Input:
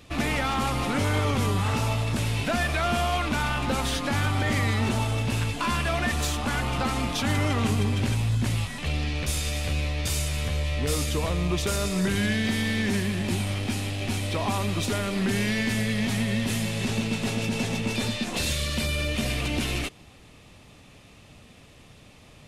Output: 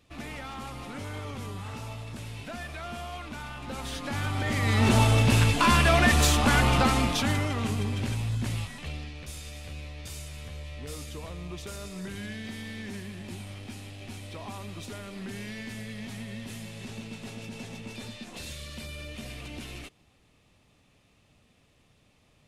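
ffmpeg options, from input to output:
-af "volume=5.5dB,afade=t=in:st=3.59:d=1.01:silence=0.316228,afade=t=in:st=4.6:d=0.38:silence=0.375837,afade=t=out:st=6.67:d=0.81:silence=0.298538,afade=t=out:st=8.58:d=0.55:silence=0.398107"

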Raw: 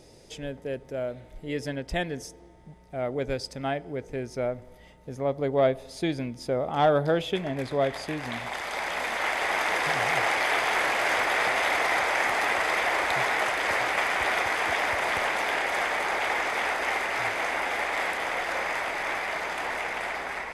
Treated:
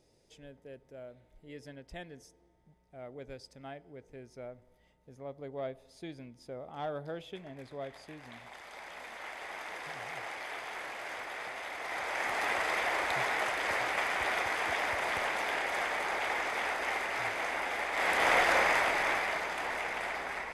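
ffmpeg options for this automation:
-af "volume=4.5dB,afade=t=in:st=11.77:d=0.73:silence=0.316228,afade=t=in:st=17.93:d=0.39:silence=0.298538,afade=t=out:st=18.32:d=1.16:silence=0.354813"

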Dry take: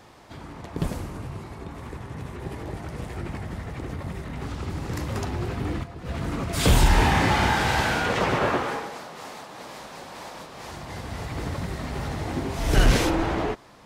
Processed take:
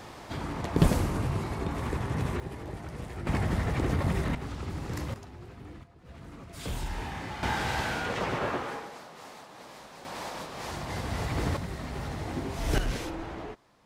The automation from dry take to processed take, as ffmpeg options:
-af "asetnsamples=n=441:p=0,asendcmd='2.4 volume volume -5dB;3.27 volume volume 5.5dB;4.35 volume volume -4.5dB;5.14 volume volume -17dB;7.43 volume volume -7.5dB;10.05 volume volume 1.5dB;11.57 volume volume -5dB;12.78 volume volume -13dB',volume=5.5dB"

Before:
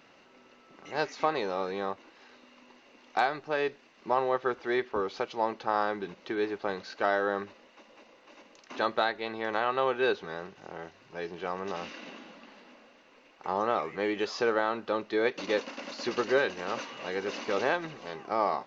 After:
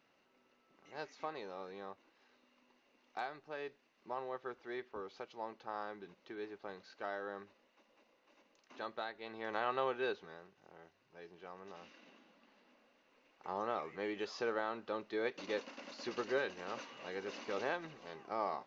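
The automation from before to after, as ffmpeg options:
-af "afade=t=in:st=9.13:d=0.58:silence=0.398107,afade=t=out:st=9.71:d=0.73:silence=0.316228,afade=t=in:st=12.32:d=1.27:silence=0.446684"

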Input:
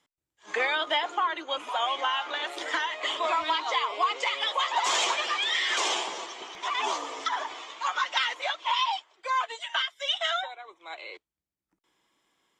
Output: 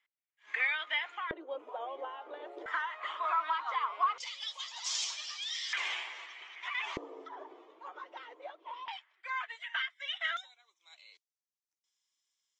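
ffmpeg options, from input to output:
-af "asetnsamples=n=441:p=0,asendcmd='1.31 bandpass f 450;2.66 bandpass f 1300;4.18 bandpass f 5300;5.73 bandpass f 2100;6.97 bandpass f 380;8.88 bandpass f 1900;10.37 bandpass f 5900',bandpass=f=2.1k:t=q:w=3:csg=0"

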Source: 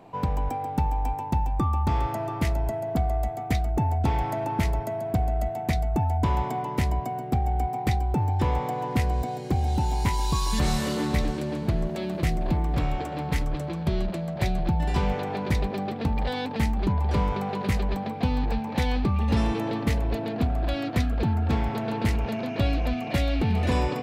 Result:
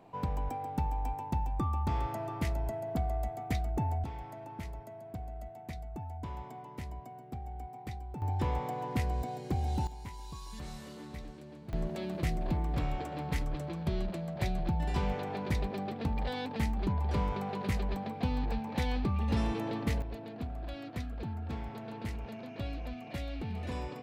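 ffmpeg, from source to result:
-af "asetnsamples=n=441:p=0,asendcmd='4.04 volume volume -17dB;8.22 volume volume -7.5dB;9.87 volume volume -19.5dB;11.73 volume volume -7dB;20.02 volume volume -14dB',volume=-7.5dB"

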